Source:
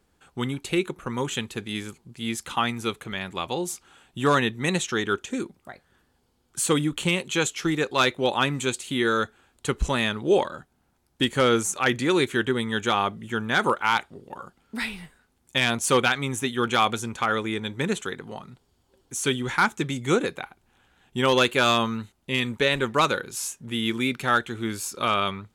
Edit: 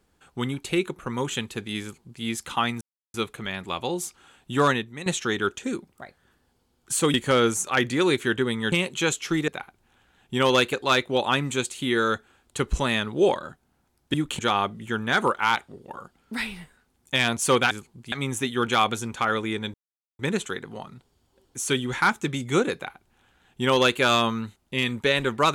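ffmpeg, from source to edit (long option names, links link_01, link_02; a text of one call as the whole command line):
ffmpeg -i in.wav -filter_complex "[0:a]asplit=12[link_01][link_02][link_03][link_04][link_05][link_06][link_07][link_08][link_09][link_10][link_11][link_12];[link_01]atrim=end=2.81,asetpts=PTS-STARTPTS,afade=type=out:start_time=2.806:duration=0.004:curve=hsin,apad=pad_dur=0.33[link_13];[link_02]atrim=start=2.81:end=4.73,asetpts=PTS-STARTPTS,afade=type=in:duration=0.004:curve=hsin,afade=type=out:start_time=1.56:duration=0.36:curve=qua:silence=0.237137[link_14];[link_03]atrim=start=4.73:end=6.812,asetpts=PTS-STARTPTS,afade=type=in:duration=0.004:curve=hsin:silence=0.237137[link_15];[link_04]atrim=start=11.228:end=12.812[link_16];[link_05]atrim=start=7.058:end=7.822[link_17];[link_06]atrim=start=20.308:end=21.562[link_18];[link_07]atrim=start=7.818:end=11.232[link_19];[link_08]atrim=start=6.808:end=7.062[link_20];[link_09]atrim=start=12.808:end=16.132[link_21];[link_10]atrim=start=1.818:end=2.232[link_22];[link_11]atrim=start=16.128:end=17.75,asetpts=PTS-STARTPTS,afade=type=out:start_time=1.618:duration=0.004:curve=hsin,apad=pad_dur=0.45[link_23];[link_12]atrim=start=17.75,asetpts=PTS-STARTPTS,afade=type=in:duration=0.004:curve=hsin[link_24];[link_13][link_14][link_15]concat=n=3:v=0:a=1[link_25];[link_25][link_16]acrossfade=duration=0.004:curve1=hsin:curve2=hsin[link_26];[link_26][link_17]acrossfade=duration=0.004:curve1=hsin:curve2=hsin[link_27];[link_27][link_18]acrossfade=duration=0.004:curve1=hsin:curve2=hsin[link_28];[link_28][link_19]acrossfade=duration=0.004:curve1=hsin:curve2=hsin[link_29];[link_29][link_20]acrossfade=duration=0.004:curve1=hsin:curve2=hsin[link_30];[link_30][link_21]acrossfade=duration=0.004:curve1=hsin:curve2=hsin[link_31];[link_31][link_22]acrossfade=duration=0.004:curve1=hsin:curve2=hsin[link_32];[link_23][link_24]concat=n=2:v=0:a=1[link_33];[link_32][link_33]acrossfade=duration=0.004:curve1=hsin:curve2=hsin" out.wav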